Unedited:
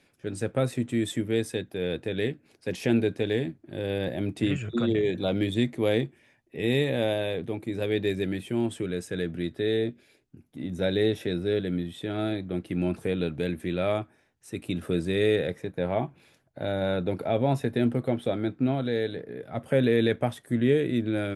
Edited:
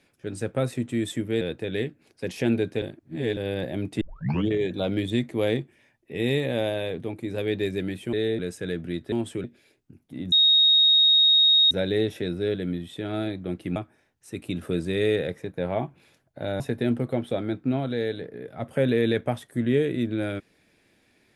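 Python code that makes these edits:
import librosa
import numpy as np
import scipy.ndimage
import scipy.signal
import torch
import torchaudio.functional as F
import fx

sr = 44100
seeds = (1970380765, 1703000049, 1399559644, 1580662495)

y = fx.edit(x, sr, fx.cut(start_s=1.41, length_s=0.44),
    fx.reverse_span(start_s=3.26, length_s=0.55),
    fx.tape_start(start_s=4.45, length_s=0.48),
    fx.swap(start_s=8.57, length_s=0.32, other_s=9.62, other_length_s=0.26),
    fx.insert_tone(at_s=10.76, length_s=1.39, hz=3750.0, db=-14.5),
    fx.cut(start_s=12.81, length_s=1.15),
    fx.cut(start_s=16.8, length_s=0.75), tone=tone)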